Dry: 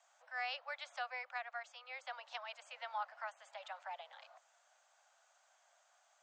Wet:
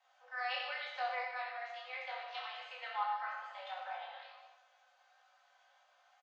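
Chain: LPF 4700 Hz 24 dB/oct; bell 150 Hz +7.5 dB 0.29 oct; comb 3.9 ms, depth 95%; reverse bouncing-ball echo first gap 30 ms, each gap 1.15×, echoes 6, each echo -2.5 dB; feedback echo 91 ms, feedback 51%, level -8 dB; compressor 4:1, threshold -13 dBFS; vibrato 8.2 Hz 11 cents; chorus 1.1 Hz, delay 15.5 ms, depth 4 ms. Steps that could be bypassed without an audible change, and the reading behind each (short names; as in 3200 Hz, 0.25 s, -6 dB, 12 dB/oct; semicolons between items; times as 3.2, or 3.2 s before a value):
bell 150 Hz: input band starts at 450 Hz; compressor, threshold -13 dBFS: input peak -20.5 dBFS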